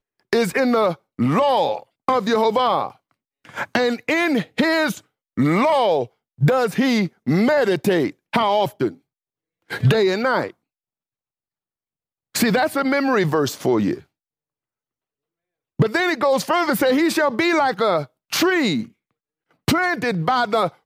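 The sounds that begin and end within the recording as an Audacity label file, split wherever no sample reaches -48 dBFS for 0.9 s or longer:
12.340000	14.040000	sound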